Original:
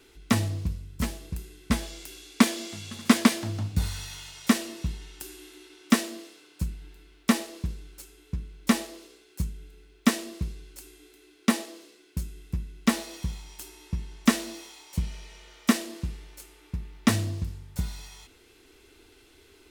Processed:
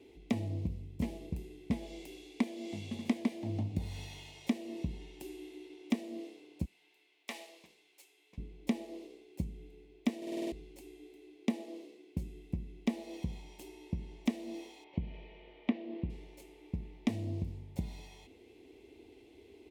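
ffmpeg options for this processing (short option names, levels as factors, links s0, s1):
-filter_complex "[0:a]asettb=1/sr,asplit=3[s0][s1][s2];[s0]atrim=end=6.654[s3];[s1]atrim=start=6.65:end=8.38,asetpts=PTS-STARTPTS,afade=t=in:d=0.004:c=qsin,afade=t=out:st=1.726:d=0.004:c=qsin,highpass=1100[s4];[s2]atrim=start=8.376[s5];[s3][s4]acrossfade=d=0.004:c1=hsin:c2=qsin[s6];[s6][s5]acrossfade=d=0.004:c1=qsin:c2=hsin,asettb=1/sr,asplit=3[s7][s8][s9];[s7]atrim=end=14.844[s10];[s8]atrim=start=14.84:end=16.1,asetpts=PTS-STARTPTS,afade=t=in:d=0.004:c=qsin,afade=t=out:st=1.256:d=0.004:c=qsin,lowpass=f=3200:w=0.5412,lowpass=f=3200:w=1.3066[s11];[s9]atrim=start=16.096[s12];[s10][s11]acrossfade=d=0.004:c1=hsin:c2=qsin[s13];[s13][s12]acrossfade=d=0.004:c1=qsin:c2=hsin,asplit=8[s14][s15][s16][s17][s18][s19][s20][s21];[s14]atrim=end=10.222[s22];[s15]atrim=start=10.168:end=10.222[s23];[s16]atrim=start=10.168:end=10.222[s24];[s17]atrim=start=10.168:end=10.222[s25];[s18]atrim=start=10.168:end=10.222[s26];[s19]atrim=start=10.168:end=10.222[s27];[s20]atrim=start=10.168:end=10.222[s28];[s21]atrim=start=10.518[s29];[s22][s23]acrossfade=d=0.004:c1=hsin:c2=hsin[s30];[s30][s24]acrossfade=d=0.004:c1=hsin:c2=hsin[s31];[s31][s25]acrossfade=d=0.004:c1=hsin:c2=hsin[s32];[s32][s26]acrossfade=d=0.004:c1=hsin:c2=hsin[s33];[s33][s27]acrossfade=d=0.004:c1=hsin:c2=hsin[s34];[s34][s28]acrossfade=d=0.004:c1=hsin:c2=hsin[s35];[s35][s29]acrossfade=d=0.004:c1=hsin:c2=hsin,highpass=62,acompressor=threshold=0.0316:ratio=6,firequalizer=gain_entry='entry(160,0);entry(240,5);entry(790,1);entry(1400,-22);entry(2100,-3);entry(4900,-12);entry(9500,-14)':delay=0.05:min_phase=1,volume=0.841"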